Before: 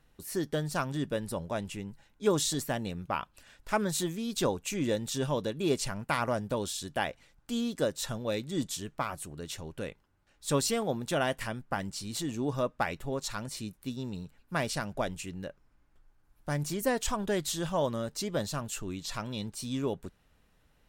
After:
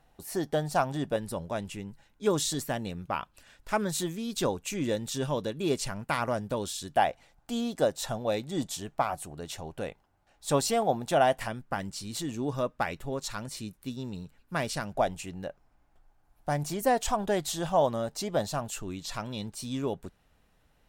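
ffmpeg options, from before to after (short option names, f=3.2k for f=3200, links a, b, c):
-af "asetnsamples=n=441:p=0,asendcmd='1.16 equalizer g 1.5;6.97 equalizer g 12;11.48 equalizer g 1;14.95 equalizer g 11;18.7 equalizer g 4',equalizer=f=740:t=o:w=0.57:g=13"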